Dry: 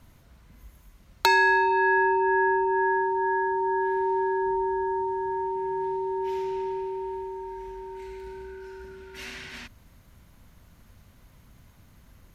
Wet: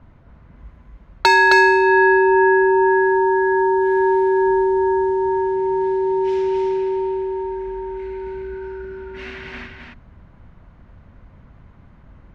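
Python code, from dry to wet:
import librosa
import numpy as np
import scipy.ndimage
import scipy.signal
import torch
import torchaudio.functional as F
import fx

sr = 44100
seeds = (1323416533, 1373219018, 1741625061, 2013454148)

y = fx.env_lowpass(x, sr, base_hz=1500.0, full_db=-21.5)
y = y + 10.0 ** (-3.5 / 20.0) * np.pad(y, (int(265 * sr / 1000.0), 0))[:len(y)]
y = F.gain(torch.from_numpy(y), 7.0).numpy()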